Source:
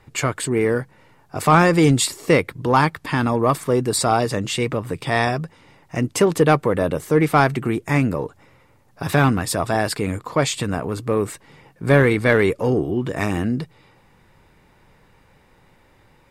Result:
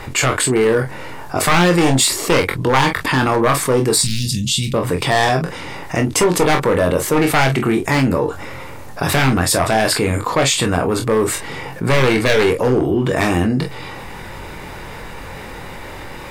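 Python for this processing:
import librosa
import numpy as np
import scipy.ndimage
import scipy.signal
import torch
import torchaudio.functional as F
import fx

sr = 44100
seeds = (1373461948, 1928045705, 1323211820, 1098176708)

p1 = np.minimum(x, 2.0 * 10.0 ** (-12.0 / 20.0) - x)
p2 = fx.cheby1_bandstop(p1, sr, low_hz=200.0, high_hz=3400.0, order=3, at=(4.01, 4.74))
p3 = 10.0 ** (-17.0 / 20.0) * np.tanh(p2 / 10.0 ** (-17.0 / 20.0))
p4 = p2 + (p3 * librosa.db_to_amplitude(-9.0))
p5 = fx.peak_eq(p4, sr, hz=140.0, db=-4.5, octaves=1.9)
p6 = p5 + fx.room_early_taps(p5, sr, ms=(23, 45), db=(-6.0, -12.5), dry=0)
y = fx.env_flatten(p6, sr, amount_pct=50)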